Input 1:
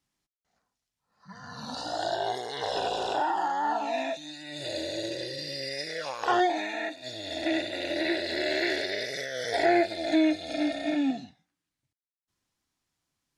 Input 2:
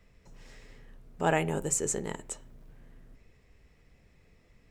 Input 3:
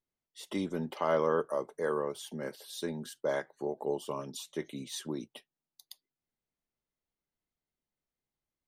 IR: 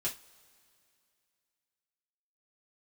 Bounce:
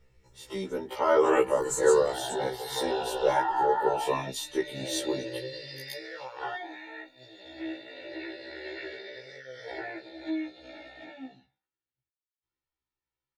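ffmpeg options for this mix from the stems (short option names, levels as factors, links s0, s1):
-filter_complex "[0:a]lowpass=3400,adelay=150,volume=0.944,afade=t=out:st=5.77:d=0.78:silence=0.375837[s0];[1:a]volume=0.841[s1];[2:a]dynaudnorm=f=130:g=11:m=2.82,volume=0.891[s2];[s0][s1][s2]amix=inputs=3:normalize=0,aecho=1:1:2.2:0.6,afftfilt=real='re*1.73*eq(mod(b,3),0)':imag='im*1.73*eq(mod(b,3),0)':win_size=2048:overlap=0.75"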